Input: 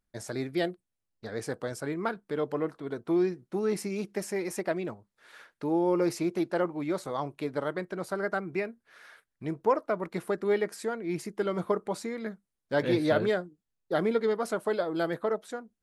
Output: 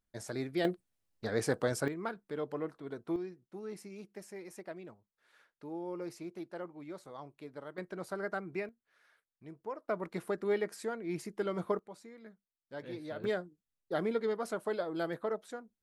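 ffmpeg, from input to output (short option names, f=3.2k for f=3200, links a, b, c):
-af "asetnsamples=n=441:p=0,asendcmd='0.65 volume volume 3dB;1.88 volume volume -7dB;3.16 volume volume -14.5dB;7.78 volume volume -6.5dB;8.69 volume volume -16dB;9.89 volume volume -5dB;11.79 volume volume -17dB;13.24 volume volume -6dB',volume=-4dB"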